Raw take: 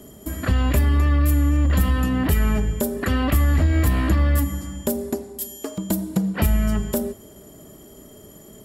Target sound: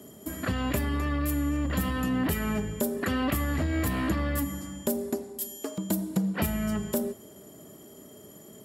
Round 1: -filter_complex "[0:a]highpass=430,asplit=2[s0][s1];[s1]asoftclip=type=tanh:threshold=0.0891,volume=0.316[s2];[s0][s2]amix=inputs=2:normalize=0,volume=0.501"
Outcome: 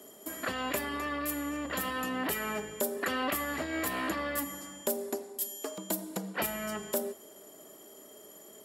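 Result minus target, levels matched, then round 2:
125 Hz band -13.5 dB
-filter_complex "[0:a]highpass=120,asplit=2[s0][s1];[s1]asoftclip=type=tanh:threshold=0.0891,volume=0.316[s2];[s0][s2]amix=inputs=2:normalize=0,volume=0.501"

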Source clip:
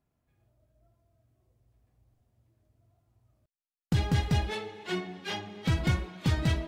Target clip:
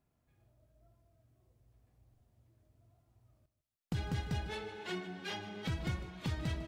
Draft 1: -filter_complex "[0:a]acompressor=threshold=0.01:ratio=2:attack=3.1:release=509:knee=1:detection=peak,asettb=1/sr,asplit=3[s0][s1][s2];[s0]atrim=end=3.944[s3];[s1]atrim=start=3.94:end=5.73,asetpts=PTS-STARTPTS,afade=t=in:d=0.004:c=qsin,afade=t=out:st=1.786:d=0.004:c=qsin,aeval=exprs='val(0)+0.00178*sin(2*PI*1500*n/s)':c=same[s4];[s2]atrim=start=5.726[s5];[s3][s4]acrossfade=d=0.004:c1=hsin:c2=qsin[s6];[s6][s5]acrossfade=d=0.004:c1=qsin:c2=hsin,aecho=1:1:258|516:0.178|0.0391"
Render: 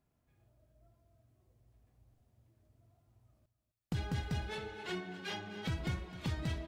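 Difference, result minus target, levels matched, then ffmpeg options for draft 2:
echo 107 ms late
-filter_complex "[0:a]acompressor=threshold=0.01:ratio=2:attack=3.1:release=509:knee=1:detection=peak,asettb=1/sr,asplit=3[s0][s1][s2];[s0]atrim=end=3.944[s3];[s1]atrim=start=3.94:end=5.73,asetpts=PTS-STARTPTS,afade=t=in:d=0.004:c=qsin,afade=t=out:st=1.786:d=0.004:c=qsin,aeval=exprs='val(0)+0.00178*sin(2*PI*1500*n/s)':c=same[s4];[s2]atrim=start=5.726[s5];[s3][s4]acrossfade=d=0.004:c1=hsin:c2=qsin[s6];[s6][s5]acrossfade=d=0.004:c1=qsin:c2=hsin,aecho=1:1:151|302:0.178|0.0391"

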